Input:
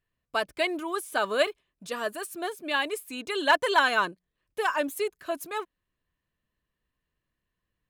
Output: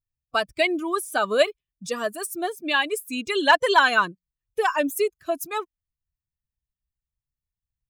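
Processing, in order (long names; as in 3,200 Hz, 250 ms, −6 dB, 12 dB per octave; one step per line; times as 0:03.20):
spectral dynamics exaggerated over time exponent 1.5
in parallel at −1 dB: downward compressor, threshold −35 dBFS, peak gain reduction 16 dB
on the sum: level +5 dB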